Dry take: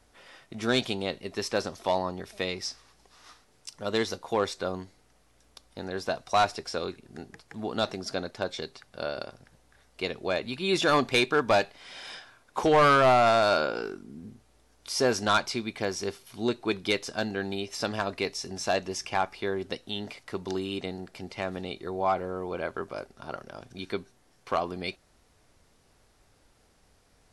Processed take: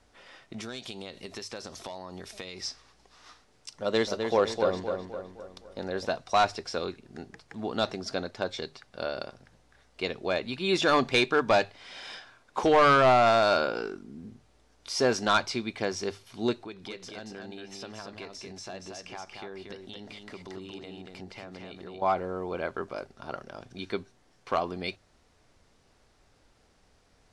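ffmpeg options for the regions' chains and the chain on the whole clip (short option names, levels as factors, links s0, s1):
-filter_complex "[0:a]asettb=1/sr,asplit=3[s0][s1][s2];[s0]atrim=end=0.604[s3];[s1]atrim=start=0.6:end=2.61,asetpts=PTS-STARTPTS,afade=t=in:d=0.004:c=qsin,afade=t=out:st=2.006:d=0.004:c=qsin,highshelf=f=4500:g=11,acompressor=threshold=0.0178:ratio=10:attack=3.2:release=140:knee=1:detection=peak[s4];[s2]atrim=start=2.606[s5];[s3][s4]acrossfade=d=0.004:c1=hsin:c2=qsin[s6];[s6][s5]acrossfade=d=0.004:c1=qsin:c2=hsin,asettb=1/sr,asplit=3[s7][s8][s9];[s7]atrim=end=3.814[s10];[s8]atrim=start=3.81:end=6.06,asetpts=PTS-STARTPTS,afade=t=in:d=0.004:c=qsin,afade=t=out:st=2.246:d=0.004:c=qsin,equalizer=f=550:t=o:w=0.36:g=6,asplit=2[s11][s12];[s12]adelay=257,lowpass=f=3400:p=1,volume=0.531,asplit=2[s13][s14];[s14]adelay=257,lowpass=f=3400:p=1,volume=0.48,asplit=2[s15][s16];[s16]adelay=257,lowpass=f=3400:p=1,volume=0.48,asplit=2[s17][s18];[s18]adelay=257,lowpass=f=3400:p=1,volume=0.48,asplit=2[s19][s20];[s20]adelay=257,lowpass=f=3400:p=1,volume=0.48,asplit=2[s21][s22];[s22]adelay=257,lowpass=f=3400:p=1,volume=0.48[s23];[s11][s13][s15][s17][s19][s21][s23]amix=inputs=7:normalize=0,atrim=end_sample=99225[s24];[s9]atrim=start=6.056[s25];[s10][s24]acrossfade=d=0.004:c1=hsin:c2=qsin[s26];[s26][s25]acrossfade=d=0.004:c1=qsin:c2=hsin,asettb=1/sr,asplit=3[s27][s28][s29];[s27]atrim=end=16.624[s30];[s28]atrim=start=16.62:end=22.02,asetpts=PTS-STARTPTS,afade=t=in:d=0.004:c=qsin,afade=t=out:st=5.396:d=0.004:c=qsin,acompressor=threshold=0.00794:ratio=3:attack=3.2:release=140:knee=1:detection=peak,aecho=1:1:232:0.596,atrim=end_sample=238140[s31];[s29]atrim=start=22.016[s32];[s30][s31]acrossfade=d=0.004:c1=hsin:c2=qsin[s33];[s33][s32]acrossfade=d=0.004:c1=qsin:c2=hsin,lowpass=7500,bandreject=f=50:t=h:w=6,bandreject=f=100:t=h:w=6,bandreject=f=150:t=h:w=6"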